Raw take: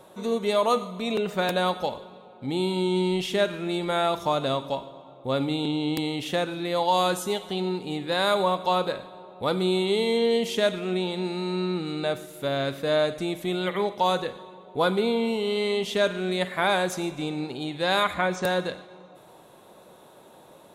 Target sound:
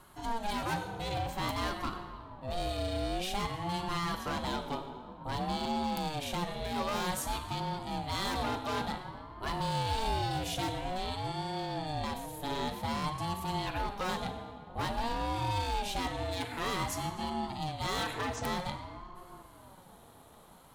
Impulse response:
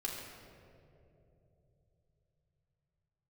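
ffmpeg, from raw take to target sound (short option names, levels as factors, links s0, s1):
-filter_complex "[0:a]highshelf=f=6300:g=7.5,asoftclip=type=hard:threshold=0.0631,asplit=2[s0][s1];[1:a]atrim=start_sample=2205[s2];[s1][s2]afir=irnorm=-1:irlink=0,volume=0.531[s3];[s0][s3]amix=inputs=2:normalize=0,aeval=exprs='val(0)*sin(2*PI*410*n/s+410*0.3/0.52*sin(2*PI*0.52*n/s))':c=same,volume=0.473"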